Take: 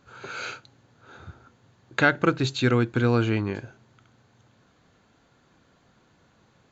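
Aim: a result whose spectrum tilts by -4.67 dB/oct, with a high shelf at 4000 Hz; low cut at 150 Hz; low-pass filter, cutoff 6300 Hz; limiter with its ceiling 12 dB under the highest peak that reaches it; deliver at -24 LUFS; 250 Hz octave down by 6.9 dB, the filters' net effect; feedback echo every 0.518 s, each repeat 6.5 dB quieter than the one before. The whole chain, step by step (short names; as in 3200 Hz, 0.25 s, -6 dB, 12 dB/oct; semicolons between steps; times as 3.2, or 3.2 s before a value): HPF 150 Hz; LPF 6300 Hz; bell 250 Hz -8.5 dB; high shelf 4000 Hz +5 dB; limiter -16.5 dBFS; feedback echo 0.518 s, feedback 47%, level -6.5 dB; gain +7.5 dB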